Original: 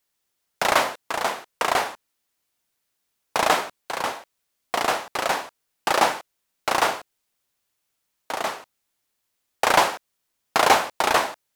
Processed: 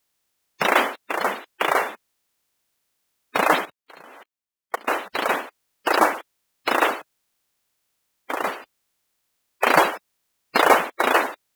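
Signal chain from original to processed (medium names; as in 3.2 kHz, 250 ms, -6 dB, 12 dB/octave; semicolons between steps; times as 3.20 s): coarse spectral quantiser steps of 30 dB; dynamic bell 2.2 kHz, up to -3 dB, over -34 dBFS, Q 1; 3.65–4.91 s: level held to a coarse grid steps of 24 dB; trim +3 dB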